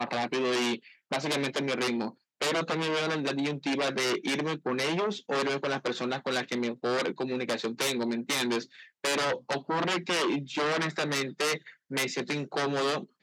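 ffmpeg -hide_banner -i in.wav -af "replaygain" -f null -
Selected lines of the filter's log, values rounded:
track_gain = +10.5 dB
track_peak = 0.083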